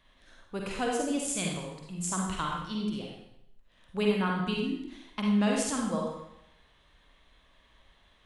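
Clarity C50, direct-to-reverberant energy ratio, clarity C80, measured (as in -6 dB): 0.0 dB, -1.5 dB, 4.0 dB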